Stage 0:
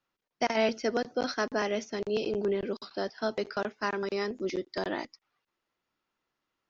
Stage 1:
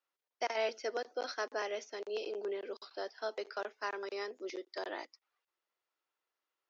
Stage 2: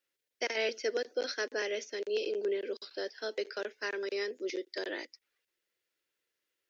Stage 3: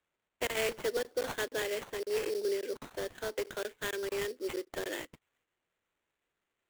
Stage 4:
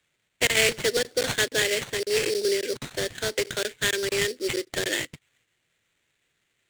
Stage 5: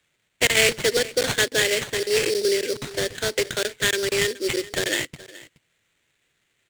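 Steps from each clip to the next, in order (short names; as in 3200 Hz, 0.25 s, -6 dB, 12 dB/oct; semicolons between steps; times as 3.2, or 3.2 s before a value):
HPF 380 Hz 24 dB/oct; gain -6.5 dB
band shelf 930 Hz -12.5 dB 1.2 oct; gain +6 dB
sample-rate reducer 5100 Hz, jitter 20%
graphic EQ 125/1000/2000/4000/8000 Hz +10/-5/+6/+7/+8 dB; gain +7 dB
echo 0.423 s -19 dB; gain +3 dB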